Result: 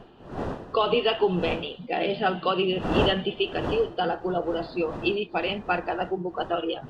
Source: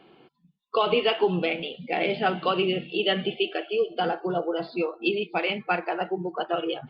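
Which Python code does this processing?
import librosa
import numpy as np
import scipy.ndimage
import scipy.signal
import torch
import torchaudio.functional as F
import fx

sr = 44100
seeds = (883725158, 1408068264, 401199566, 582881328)

y = fx.dmg_wind(x, sr, seeds[0], corner_hz=590.0, level_db=-35.0)
y = fx.notch(y, sr, hz=2200.0, q=5.1)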